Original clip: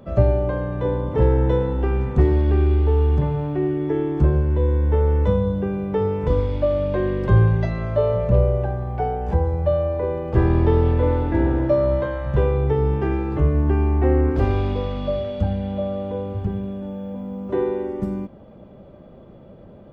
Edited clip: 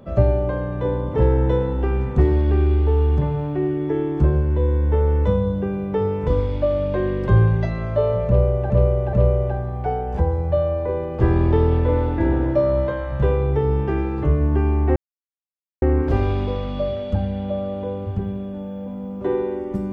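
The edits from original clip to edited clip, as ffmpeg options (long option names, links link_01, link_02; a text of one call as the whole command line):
ffmpeg -i in.wav -filter_complex "[0:a]asplit=4[link_01][link_02][link_03][link_04];[link_01]atrim=end=8.702[link_05];[link_02]atrim=start=8.268:end=8.702[link_06];[link_03]atrim=start=8.268:end=14.1,asetpts=PTS-STARTPTS,afade=type=out:start_time=5.828:duration=0.004:curve=hsin,apad=pad_dur=0.86[link_07];[link_04]atrim=start=14.1,asetpts=PTS-STARTPTS,afade=type=in:duration=0.004:curve=hsin[link_08];[link_05][link_06]acrossfade=duration=0.004:curve1=hsin:curve2=hsin[link_09];[link_07][link_08]concat=n=2:v=0:a=1[link_10];[link_09][link_10]acrossfade=duration=0.004:curve1=hsin:curve2=hsin" out.wav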